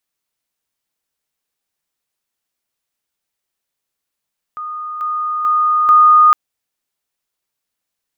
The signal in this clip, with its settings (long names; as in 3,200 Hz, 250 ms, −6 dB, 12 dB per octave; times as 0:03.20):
level staircase 1,230 Hz −23 dBFS, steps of 6 dB, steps 4, 0.44 s 0.00 s